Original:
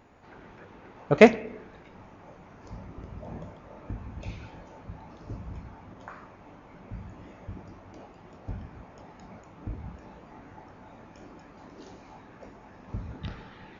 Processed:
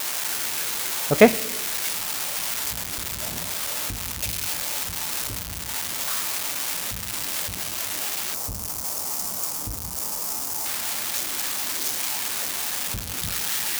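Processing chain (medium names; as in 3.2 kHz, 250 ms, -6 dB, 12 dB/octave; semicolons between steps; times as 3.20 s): zero-crossing glitches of -14 dBFS; 8.34–10.66 s: high-order bell 2.5 kHz -10.5 dB; trim +1 dB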